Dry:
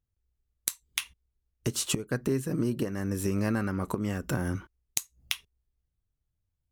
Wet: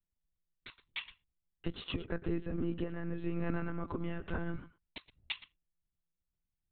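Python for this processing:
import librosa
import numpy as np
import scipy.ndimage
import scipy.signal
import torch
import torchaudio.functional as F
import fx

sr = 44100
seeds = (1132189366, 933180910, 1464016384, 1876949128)

y = x + 10.0 ** (-16.5 / 20.0) * np.pad(x, (int(110 * sr / 1000.0), 0))[:len(x)]
y = fx.lpc_monotone(y, sr, seeds[0], pitch_hz=170.0, order=16)
y = y * librosa.db_to_amplitude(-6.0)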